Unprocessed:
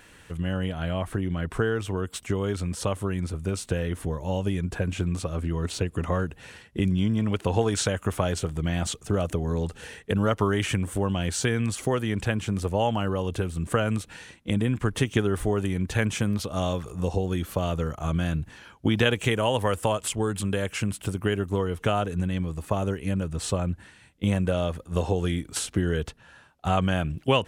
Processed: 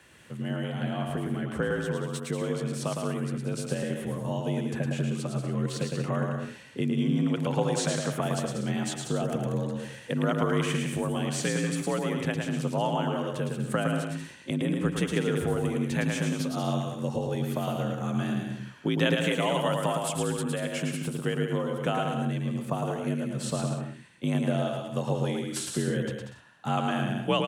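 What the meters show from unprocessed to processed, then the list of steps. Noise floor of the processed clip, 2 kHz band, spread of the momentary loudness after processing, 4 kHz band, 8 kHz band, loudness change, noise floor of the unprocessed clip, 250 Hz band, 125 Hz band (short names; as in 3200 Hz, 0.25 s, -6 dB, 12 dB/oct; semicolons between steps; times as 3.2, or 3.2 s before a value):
-47 dBFS, -2.0 dB, 6 LU, -2.5 dB, -2.5 dB, -2.0 dB, -53 dBFS, -1.0 dB, -3.0 dB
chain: bouncing-ball echo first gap 0.11 s, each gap 0.7×, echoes 5; frequency shift +50 Hz; gain -4.5 dB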